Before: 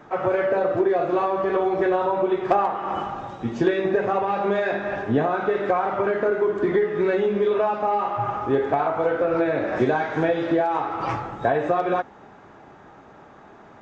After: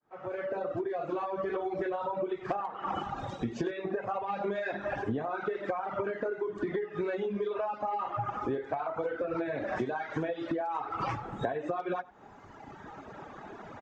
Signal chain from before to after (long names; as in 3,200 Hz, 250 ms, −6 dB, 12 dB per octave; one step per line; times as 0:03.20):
fade in at the beginning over 2.81 s
reverb reduction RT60 1.7 s
downward compressor 10 to 1, threshold −35 dBFS, peak gain reduction 20 dB
single-tap delay 96 ms −21 dB
level +5 dB